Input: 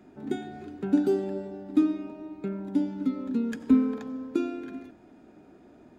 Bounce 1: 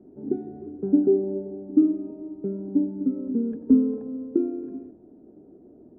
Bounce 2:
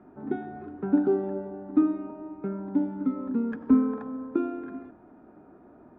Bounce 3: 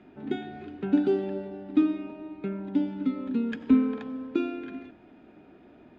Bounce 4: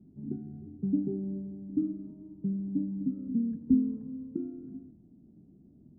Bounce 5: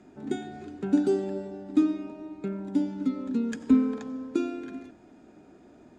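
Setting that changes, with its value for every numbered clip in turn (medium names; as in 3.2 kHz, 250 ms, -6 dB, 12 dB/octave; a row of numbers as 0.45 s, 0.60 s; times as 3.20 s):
resonant low-pass, frequency: 430 Hz, 1.2 kHz, 3 kHz, 170 Hz, 7.8 kHz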